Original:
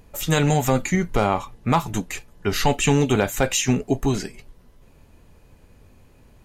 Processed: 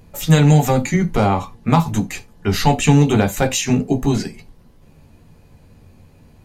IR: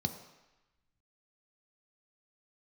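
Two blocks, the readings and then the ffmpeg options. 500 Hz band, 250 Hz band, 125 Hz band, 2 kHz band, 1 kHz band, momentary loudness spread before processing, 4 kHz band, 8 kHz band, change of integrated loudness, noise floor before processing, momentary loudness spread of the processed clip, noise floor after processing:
+2.5 dB, +6.0 dB, +8.0 dB, +1.5 dB, +3.5 dB, 9 LU, +2.0 dB, +1.5 dB, +5.0 dB, -53 dBFS, 10 LU, -49 dBFS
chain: -filter_complex "[0:a]asplit=2[a][b];[1:a]atrim=start_sample=2205,atrim=end_sample=3528,adelay=12[c];[b][c]afir=irnorm=-1:irlink=0,volume=-8dB[d];[a][d]amix=inputs=2:normalize=0,volume=1dB"

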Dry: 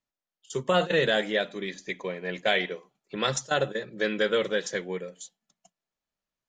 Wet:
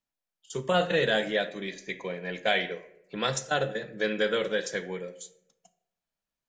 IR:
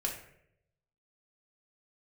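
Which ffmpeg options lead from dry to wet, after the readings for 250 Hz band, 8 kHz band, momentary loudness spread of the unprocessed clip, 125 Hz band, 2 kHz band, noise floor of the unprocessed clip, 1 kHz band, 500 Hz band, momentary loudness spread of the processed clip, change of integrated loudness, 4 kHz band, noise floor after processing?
-1.5 dB, -2.0 dB, 13 LU, -0.5 dB, -1.0 dB, under -85 dBFS, -0.5 dB, -1.5 dB, 14 LU, -1.5 dB, -1.5 dB, under -85 dBFS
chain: -filter_complex "[0:a]asplit=2[a][b];[1:a]atrim=start_sample=2205[c];[b][c]afir=irnorm=-1:irlink=0,volume=-7.5dB[d];[a][d]amix=inputs=2:normalize=0,volume=-4.5dB"

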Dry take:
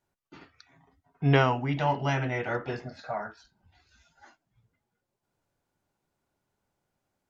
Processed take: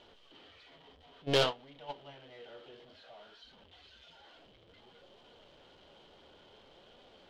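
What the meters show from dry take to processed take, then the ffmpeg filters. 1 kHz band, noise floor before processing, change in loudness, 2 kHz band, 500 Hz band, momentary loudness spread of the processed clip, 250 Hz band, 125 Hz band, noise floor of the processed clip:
-12.5 dB, -83 dBFS, -5.5 dB, -10.5 dB, -5.5 dB, 23 LU, -13.5 dB, -17.5 dB, -61 dBFS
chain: -af "aeval=exprs='val(0)+0.5*0.0596*sgn(val(0))':c=same,agate=range=-24dB:threshold=-18dB:ratio=16:detection=peak,equalizer=f=3.1k:t=o:w=0.23:g=15,flanger=delay=4:depth=9.8:regen=73:speed=0.57:shape=sinusoidal,adynamicsmooth=sensitivity=1.5:basefreq=3.1k,aeval=exprs='(tanh(22.4*val(0)+0.6)-tanh(0.6))/22.4':c=same,equalizer=f=125:t=o:w=1:g=-6,equalizer=f=500:t=o:w=1:g=9,equalizer=f=4k:t=o:w=1:g=12"

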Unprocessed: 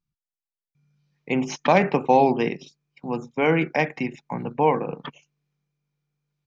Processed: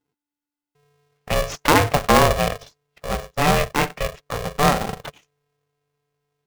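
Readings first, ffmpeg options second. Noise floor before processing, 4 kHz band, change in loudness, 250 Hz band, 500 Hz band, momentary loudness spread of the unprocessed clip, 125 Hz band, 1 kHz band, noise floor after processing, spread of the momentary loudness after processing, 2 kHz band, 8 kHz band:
under -85 dBFS, +12.0 dB, +2.5 dB, -1.0 dB, +0.5 dB, 15 LU, +6.0 dB, +2.5 dB, under -85 dBFS, 15 LU, +4.5 dB, n/a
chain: -filter_complex "[0:a]asplit=2[a][b];[b]acrusher=samples=17:mix=1:aa=0.000001,volume=-8dB[c];[a][c]amix=inputs=2:normalize=0,aeval=exprs='val(0)*sgn(sin(2*PI*290*n/s))':c=same"

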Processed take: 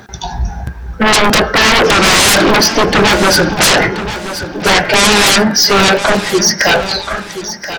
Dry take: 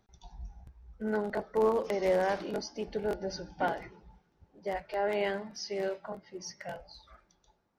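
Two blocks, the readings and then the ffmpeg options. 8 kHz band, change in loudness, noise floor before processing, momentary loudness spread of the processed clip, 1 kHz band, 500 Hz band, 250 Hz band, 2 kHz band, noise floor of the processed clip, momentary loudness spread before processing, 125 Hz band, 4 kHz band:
n/a, +24.0 dB, -73 dBFS, 14 LU, +23.5 dB, +17.5 dB, +24.0 dB, +30.0 dB, -28 dBFS, 18 LU, +27.0 dB, +35.5 dB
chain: -filter_complex "[0:a]highpass=83,apsyclip=21.5dB,equalizer=f=1.6k:w=5.3:g=12,aeval=exprs='1.68*sin(PI/2*8.91*val(0)/1.68)':c=same,bandreject=f=177.5:t=h:w=4,bandreject=f=355:t=h:w=4,bandreject=f=532.5:t=h:w=4,bandreject=f=710:t=h:w=4,bandreject=f=887.5:t=h:w=4,bandreject=f=1.065k:t=h:w=4,bandreject=f=1.2425k:t=h:w=4,bandreject=f=1.42k:t=h:w=4,bandreject=f=1.5975k:t=h:w=4,bandreject=f=1.775k:t=h:w=4,bandreject=f=1.9525k:t=h:w=4,bandreject=f=2.13k:t=h:w=4,bandreject=f=2.3075k:t=h:w=4,bandreject=f=2.485k:t=h:w=4,bandreject=f=2.6625k:t=h:w=4,bandreject=f=2.84k:t=h:w=4,bandreject=f=3.0175k:t=h:w=4,bandreject=f=3.195k:t=h:w=4,asplit=2[a][b];[b]aecho=0:1:1029|2058|3087:0.251|0.0804|0.0257[c];[a][c]amix=inputs=2:normalize=0,volume=-10dB"

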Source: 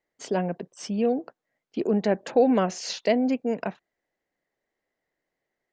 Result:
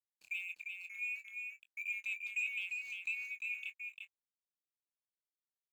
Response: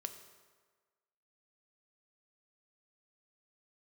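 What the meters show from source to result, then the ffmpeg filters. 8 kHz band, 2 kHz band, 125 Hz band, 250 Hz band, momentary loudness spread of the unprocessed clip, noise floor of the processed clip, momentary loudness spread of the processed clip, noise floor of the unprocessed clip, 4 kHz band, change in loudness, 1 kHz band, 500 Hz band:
-18.5 dB, +2.5 dB, under -40 dB, under -40 dB, 11 LU, under -85 dBFS, 9 LU, -85 dBFS, -14.0 dB, -14.0 dB, under -40 dB, under -40 dB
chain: -filter_complex "[0:a]afftfilt=real='real(if(lt(b,920),b+92*(1-2*mod(floor(b/92),2)),b),0)':imag='imag(if(lt(b,920),b+92*(1-2*mod(floor(b/92),2)),b),0)':win_size=2048:overlap=0.75,afftfilt=real='re*(1-between(b*sr/4096,380,1900))':imag='im*(1-between(b*sr/4096,380,1900))':win_size=4096:overlap=0.75,aderivative,acompressor=threshold=-37dB:ratio=1.5,asplit=3[a][b][c];[a]bandpass=f=730:t=q:w=8,volume=0dB[d];[b]bandpass=f=1.09k:t=q:w=8,volume=-6dB[e];[c]bandpass=f=2.44k:t=q:w=8,volume=-9dB[f];[d][e][f]amix=inputs=3:normalize=0,asoftclip=type=tanh:threshold=-39.5dB,acontrast=76,aeval=exprs='sgn(val(0))*max(abs(val(0))-0.00106,0)':c=same,asplit=2[g][h];[h]adelay=23,volume=-12dB[i];[g][i]amix=inputs=2:normalize=0,aecho=1:1:348:0.596,adynamicequalizer=threshold=0.00158:dfrequency=4400:dqfactor=0.7:tfrequency=4400:tqfactor=0.7:attack=5:release=100:ratio=0.375:range=3:mode=cutabove:tftype=highshelf,volume=2.5dB"

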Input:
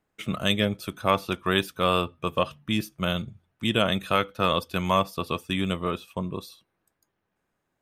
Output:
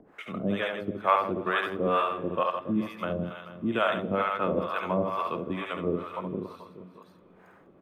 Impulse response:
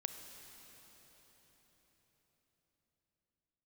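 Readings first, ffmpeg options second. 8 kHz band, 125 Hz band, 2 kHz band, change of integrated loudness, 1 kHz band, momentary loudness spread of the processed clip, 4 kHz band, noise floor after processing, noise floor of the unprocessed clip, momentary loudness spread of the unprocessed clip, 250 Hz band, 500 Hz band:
under -15 dB, -6.5 dB, -2.5 dB, -2.5 dB, -0.5 dB, 11 LU, -12.5 dB, -57 dBFS, -79 dBFS, 8 LU, -2.5 dB, -1.0 dB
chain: -filter_complex "[0:a]acrossover=split=190 2100:gain=0.2 1 0.0891[a][b][c];[a][b][c]amix=inputs=3:normalize=0,aecho=1:1:70|161|279.3|433.1|633:0.631|0.398|0.251|0.158|0.1,acrossover=split=570[d][e];[d]aeval=exprs='val(0)*(1-1/2+1/2*cos(2*PI*2.2*n/s))':c=same[f];[e]aeval=exprs='val(0)*(1-1/2-1/2*cos(2*PI*2.2*n/s))':c=same[g];[f][g]amix=inputs=2:normalize=0,acompressor=mode=upward:threshold=-41dB:ratio=2.5,asplit=2[h][i];[1:a]atrim=start_sample=2205,asetrate=30429,aresample=44100[j];[i][j]afir=irnorm=-1:irlink=0,volume=-14.5dB[k];[h][k]amix=inputs=2:normalize=0,volume=1.5dB"

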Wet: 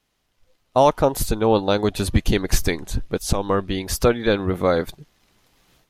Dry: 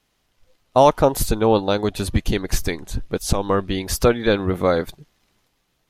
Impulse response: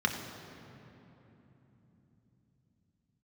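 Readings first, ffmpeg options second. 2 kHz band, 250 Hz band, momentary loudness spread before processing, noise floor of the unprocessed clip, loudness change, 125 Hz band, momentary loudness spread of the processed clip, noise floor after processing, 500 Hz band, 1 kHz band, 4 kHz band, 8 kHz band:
0.0 dB, -0.5 dB, 10 LU, -69 dBFS, -1.0 dB, 0.0 dB, 8 LU, -71 dBFS, -1.0 dB, -1.5 dB, 0.0 dB, -0.5 dB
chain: -af "dynaudnorm=f=360:g=3:m=16dB,volume=-3dB"

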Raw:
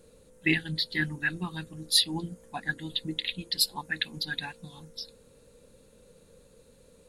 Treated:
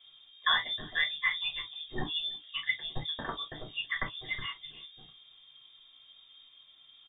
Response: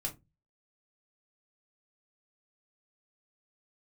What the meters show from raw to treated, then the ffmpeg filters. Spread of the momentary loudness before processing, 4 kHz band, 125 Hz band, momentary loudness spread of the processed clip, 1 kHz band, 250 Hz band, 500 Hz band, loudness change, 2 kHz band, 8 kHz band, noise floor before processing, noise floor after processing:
17 LU, -2.5 dB, -10.5 dB, 12 LU, +3.5 dB, -13.5 dB, -4.5 dB, -3.5 dB, -1.0 dB, under -40 dB, -59 dBFS, -59 dBFS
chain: -filter_complex "[0:a]asplit=2[a][b];[b]adelay=326.5,volume=-23dB,highshelf=f=4k:g=-7.35[c];[a][c]amix=inputs=2:normalize=0,lowpass=f=3.1k:t=q:w=0.5098,lowpass=f=3.1k:t=q:w=0.6013,lowpass=f=3.1k:t=q:w=0.9,lowpass=f=3.1k:t=q:w=2.563,afreqshift=-3700[d];[1:a]atrim=start_sample=2205,atrim=end_sample=3087[e];[d][e]afir=irnorm=-1:irlink=0"

